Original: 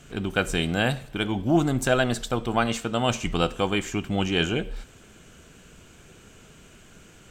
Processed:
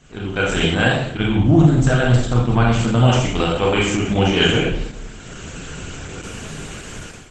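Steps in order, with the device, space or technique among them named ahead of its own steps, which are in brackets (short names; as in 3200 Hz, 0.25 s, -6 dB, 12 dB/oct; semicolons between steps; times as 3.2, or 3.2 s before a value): 1.19–3.1 tone controls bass +11 dB, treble -1 dB; speakerphone in a meeting room (reverb RT60 0.75 s, pre-delay 27 ms, DRR -2.5 dB; AGC gain up to 16 dB; gain -1 dB; Opus 12 kbps 48000 Hz)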